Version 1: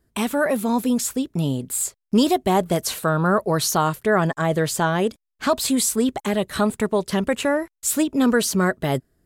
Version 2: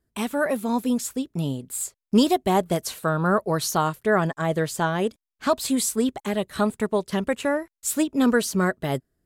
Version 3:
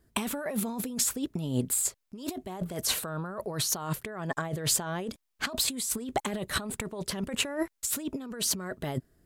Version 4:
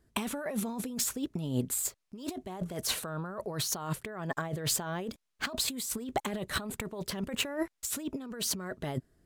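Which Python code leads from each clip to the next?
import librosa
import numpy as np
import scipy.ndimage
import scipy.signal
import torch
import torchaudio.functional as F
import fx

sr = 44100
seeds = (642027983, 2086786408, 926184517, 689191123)

y1 = fx.upward_expand(x, sr, threshold_db=-30.0, expansion=1.5)
y2 = fx.over_compress(y1, sr, threshold_db=-33.0, ratio=-1.0)
y3 = np.interp(np.arange(len(y2)), np.arange(len(y2))[::2], y2[::2])
y3 = F.gain(torch.from_numpy(y3), -2.0).numpy()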